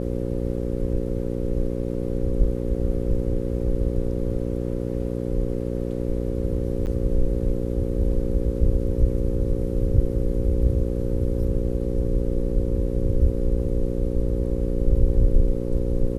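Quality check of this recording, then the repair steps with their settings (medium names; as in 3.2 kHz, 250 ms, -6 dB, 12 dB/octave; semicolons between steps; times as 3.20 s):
buzz 60 Hz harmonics 9 -27 dBFS
6.86–6.87 s: dropout 9.1 ms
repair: de-hum 60 Hz, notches 9; interpolate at 6.86 s, 9.1 ms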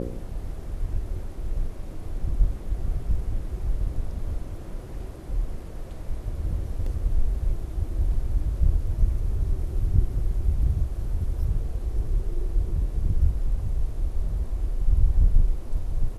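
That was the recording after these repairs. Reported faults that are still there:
nothing left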